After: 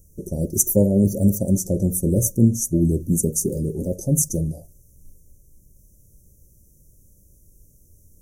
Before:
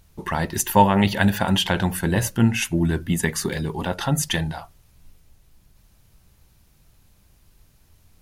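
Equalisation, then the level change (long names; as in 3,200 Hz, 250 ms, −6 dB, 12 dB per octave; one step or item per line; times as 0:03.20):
Chebyshev band-stop filter 580–5,900 Hz, order 5
high-shelf EQ 4,700 Hz +4.5 dB
+3.0 dB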